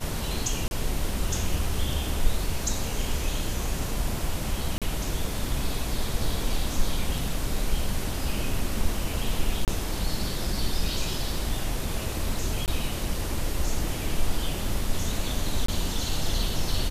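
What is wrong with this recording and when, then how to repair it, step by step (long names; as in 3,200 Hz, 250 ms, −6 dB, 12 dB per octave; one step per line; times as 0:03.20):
0:00.68–0:00.71: drop-out 31 ms
0:04.78–0:04.82: drop-out 37 ms
0:09.65–0:09.68: drop-out 28 ms
0:12.66–0:12.68: drop-out 18 ms
0:15.66–0:15.68: drop-out 24 ms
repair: repair the gap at 0:00.68, 31 ms
repair the gap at 0:04.78, 37 ms
repair the gap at 0:09.65, 28 ms
repair the gap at 0:12.66, 18 ms
repair the gap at 0:15.66, 24 ms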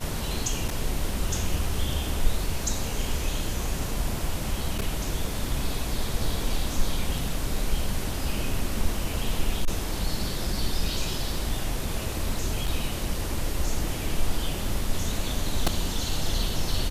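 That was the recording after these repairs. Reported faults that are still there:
none of them is left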